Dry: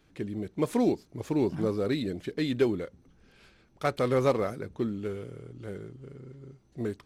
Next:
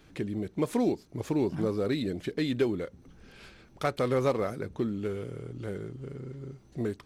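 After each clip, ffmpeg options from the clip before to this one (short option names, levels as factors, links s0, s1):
-af "acompressor=threshold=0.00501:ratio=1.5,volume=2.24"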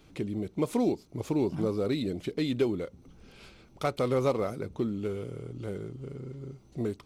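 -af "equalizer=f=1700:t=o:w=0.3:g=-9.5"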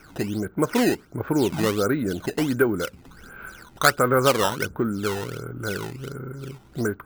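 -af "lowpass=f=1500:t=q:w=10,acrusher=samples=11:mix=1:aa=0.000001:lfo=1:lforange=17.6:lforate=1.4,volume=1.88"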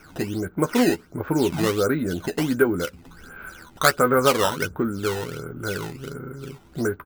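-filter_complex "[0:a]asplit=2[s0][s1];[s1]adelay=12,volume=0.398[s2];[s0][s2]amix=inputs=2:normalize=0"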